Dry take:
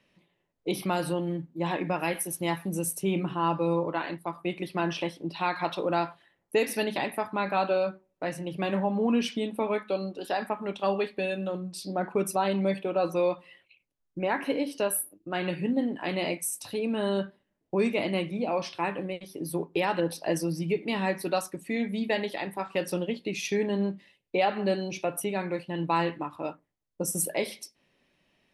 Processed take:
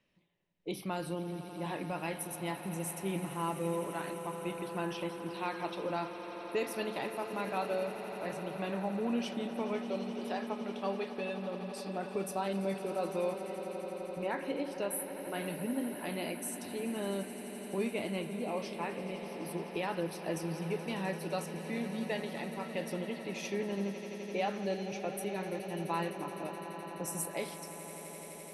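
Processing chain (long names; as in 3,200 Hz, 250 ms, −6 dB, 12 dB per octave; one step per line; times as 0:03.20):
low-shelf EQ 84 Hz +6 dB
echo that builds up and dies away 85 ms, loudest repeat 8, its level −16 dB
level −9 dB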